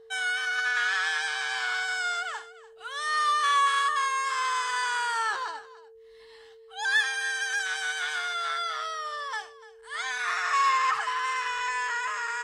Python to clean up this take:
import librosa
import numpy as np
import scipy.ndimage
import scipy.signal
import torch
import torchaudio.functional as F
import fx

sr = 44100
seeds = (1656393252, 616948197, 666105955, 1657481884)

y = fx.notch(x, sr, hz=450.0, q=30.0)
y = fx.fix_echo_inverse(y, sr, delay_ms=293, level_db=-18.5)